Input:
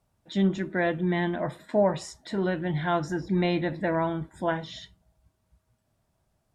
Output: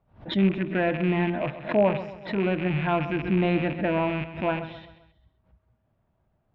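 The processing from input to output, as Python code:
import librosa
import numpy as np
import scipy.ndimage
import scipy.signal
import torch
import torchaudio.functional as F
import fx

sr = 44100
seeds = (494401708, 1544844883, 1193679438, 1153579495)

y = fx.rattle_buzz(x, sr, strikes_db=-33.0, level_db=-21.0)
y = scipy.signal.sosfilt(scipy.signal.butter(4, 3400.0, 'lowpass', fs=sr, output='sos'), y)
y = fx.high_shelf(y, sr, hz=2400.0, db=-10.5)
y = fx.echo_feedback(y, sr, ms=131, feedback_pct=42, wet_db=-12.5)
y = fx.pre_swell(y, sr, db_per_s=150.0)
y = y * 10.0 ** (2.0 / 20.0)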